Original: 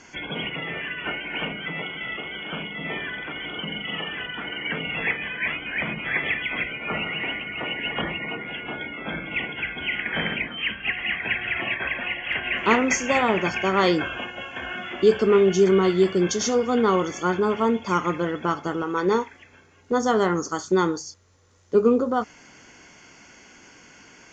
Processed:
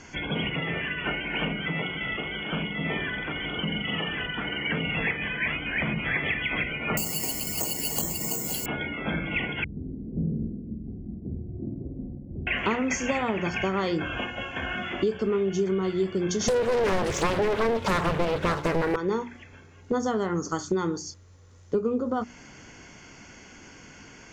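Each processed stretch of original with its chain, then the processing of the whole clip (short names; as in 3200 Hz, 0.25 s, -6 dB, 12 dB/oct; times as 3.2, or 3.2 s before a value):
6.97–8.66 zero-crossing step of -40 dBFS + band shelf 1800 Hz -11 dB 1.2 oct + careless resampling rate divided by 6×, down filtered, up zero stuff
9.64–12.47 inverse Chebyshev low-pass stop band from 1500 Hz, stop band 70 dB + flutter echo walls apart 8.5 m, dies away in 0.7 s
16.48–18.96 comb 2 ms, depth 84% + sample leveller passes 3 + Doppler distortion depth 0.93 ms
whole clip: low shelf 220 Hz +11 dB; notches 60/120/180/240/300/360 Hz; compressor, threshold -23 dBFS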